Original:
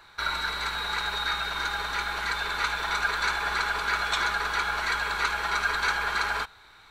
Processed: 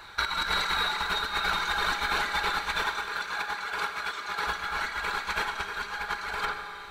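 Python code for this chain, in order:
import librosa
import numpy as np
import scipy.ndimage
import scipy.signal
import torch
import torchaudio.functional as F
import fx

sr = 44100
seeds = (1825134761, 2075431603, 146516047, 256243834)

p1 = fx.highpass(x, sr, hz=190.0, slope=6, at=(2.87, 4.47))
p2 = p1 + fx.echo_filtered(p1, sr, ms=89, feedback_pct=55, hz=3700.0, wet_db=-7.5, dry=0)
p3 = fx.over_compress(p2, sr, threshold_db=-31.0, ratio=-0.5)
p4 = fx.dereverb_blind(p3, sr, rt60_s=0.92)
p5 = fx.rev_schroeder(p4, sr, rt60_s=2.7, comb_ms=28, drr_db=5.5)
y = p5 * librosa.db_to_amplitude(2.5)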